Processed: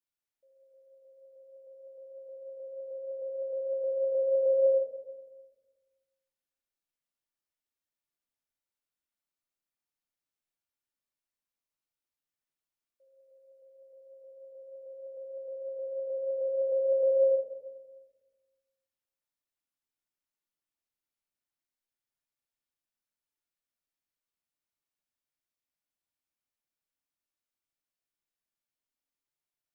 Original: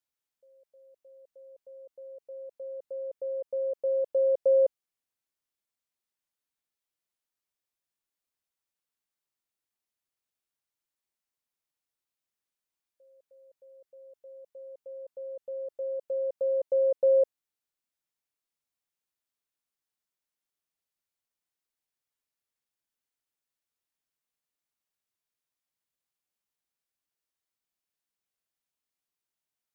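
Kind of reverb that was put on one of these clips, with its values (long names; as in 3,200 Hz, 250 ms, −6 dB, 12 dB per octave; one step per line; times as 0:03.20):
rectangular room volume 860 cubic metres, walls mixed, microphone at 2.5 metres
level −9 dB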